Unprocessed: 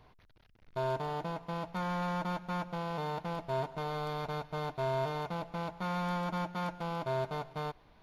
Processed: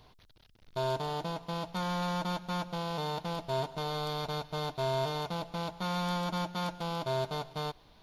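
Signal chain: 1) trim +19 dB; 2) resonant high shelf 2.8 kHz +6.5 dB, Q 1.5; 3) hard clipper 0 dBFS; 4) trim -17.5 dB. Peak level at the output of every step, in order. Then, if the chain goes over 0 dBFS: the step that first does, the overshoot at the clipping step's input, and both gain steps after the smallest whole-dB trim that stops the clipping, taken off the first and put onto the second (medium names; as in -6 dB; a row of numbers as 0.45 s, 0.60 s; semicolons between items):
-3.5 dBFS, -3.0 dBFS, -3.0 dBFS, -20.5 dBFS; nothing clips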